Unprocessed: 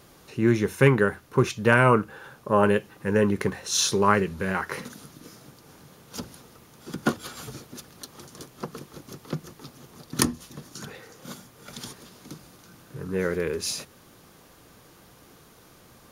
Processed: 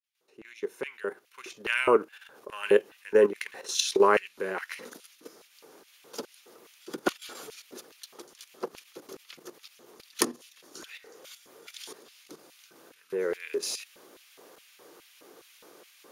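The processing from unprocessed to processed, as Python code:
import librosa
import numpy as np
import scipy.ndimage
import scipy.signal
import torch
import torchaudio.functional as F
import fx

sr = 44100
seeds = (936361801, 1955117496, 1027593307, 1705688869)

y = fx.fade_in_head(x, sr, length_s=2.2)
y = fx.level_steps(y, sr, step_db=11)
y = fx.filter_lfo_highpass(y, sr, shape='square', hz=2.4, low_hz=400.0, high_hz=2500.0, q=2.3)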